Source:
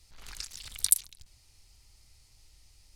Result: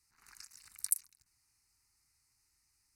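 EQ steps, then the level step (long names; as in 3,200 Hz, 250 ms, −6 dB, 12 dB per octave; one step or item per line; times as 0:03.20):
high-pass filter 410 Hz 6 dB per octave
phaser with its sweep stopped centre 1,400 Hz, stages 4
notch filter 7,100 Hz, Q 25
−7.5 dB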